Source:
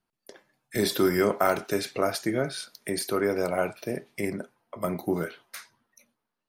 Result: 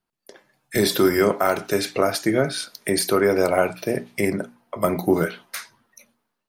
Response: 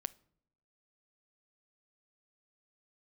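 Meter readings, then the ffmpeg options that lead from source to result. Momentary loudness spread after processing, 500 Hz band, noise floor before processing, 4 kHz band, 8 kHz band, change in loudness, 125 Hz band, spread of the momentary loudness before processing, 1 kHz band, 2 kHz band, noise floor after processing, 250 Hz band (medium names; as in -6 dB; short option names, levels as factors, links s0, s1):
10 LU, +6.5 dB, -85 dBFS, +6.5 dB, +7.0 dB, +6.5 dB, +6.0 dB, 13 LU, +5.5 dB, +6.5 dB, -81 dBFS, +6.0 dB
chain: -af "dynaudnorm=f=170:g=5:m=2.82,alimiter=limit=0.473:level=0:latency=1:release=404,bandreject=f=60:t=h:w=6,bandreject=f=120:t=h:w=6,bandreject=f=180:t=h:w=6,bandreject=f=240:t=h:w=6,bandreject=f=300:t=h:w=6"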